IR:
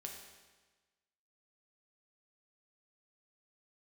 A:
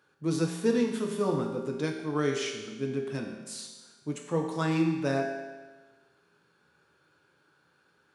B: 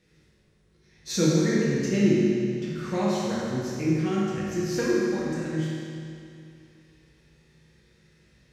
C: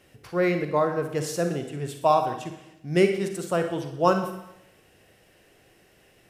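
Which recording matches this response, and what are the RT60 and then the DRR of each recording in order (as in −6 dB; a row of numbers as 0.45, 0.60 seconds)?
A; 1.3, 2.5, 0.85 seconds; 1.0, −8.0, 6.0 decibels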